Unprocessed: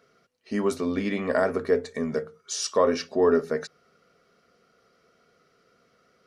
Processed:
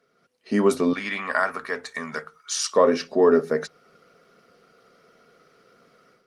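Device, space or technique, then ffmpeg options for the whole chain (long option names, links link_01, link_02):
video call: -filter_complex "[0:a]asettb=1/sr,asplit=3[link_01][link_02][link_03];[link_01]atrim=end=0.934[link_04];[link_02]atrim=start=0.93:end=2.71,asetpts=PTS-STARTPTS,afade=type=in:duration=0.004:curve=qsin,afade=type=out:start_time=1.776:duration=0.004:curve=qsin,lowshelf=frequency=710:width_type=q:width=1.5:gain=-14[link_05];[link_03]atrim=start=2.706[link_06];[link_04][link_05]acrossfade=duration=0.004:curve1=hsin:curve2=qsin[link_07];[link_07][link_06]acrossfade=duration=0.004:curve1=qsin:curve2=hsin,highpass=frequency=120:width=0.5412,highpass=frequency=120:width=1.3066,dynaudnorm=framelen=170:gausssize=3:maxgain=12dB,volume=-4dB" -ar 48000 -c:a libopus -b:a 32k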